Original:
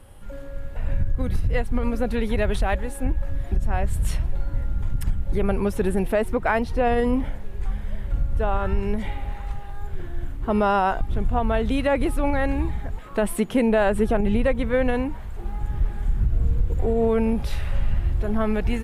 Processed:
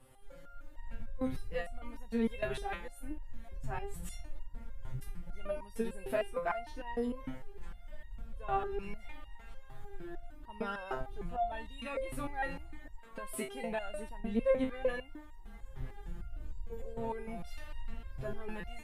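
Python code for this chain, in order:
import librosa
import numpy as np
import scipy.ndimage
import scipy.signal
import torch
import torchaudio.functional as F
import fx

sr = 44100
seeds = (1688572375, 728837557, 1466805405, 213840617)

y = fx.low_shelf(x, sr, hz=190.0, db=-4.5)
y = fx.resonator_held(y, sr, hz=6.6, low_hz=130.0, high_hz=930.0)
y = y * 10.0 ** (2.0 / 20.0)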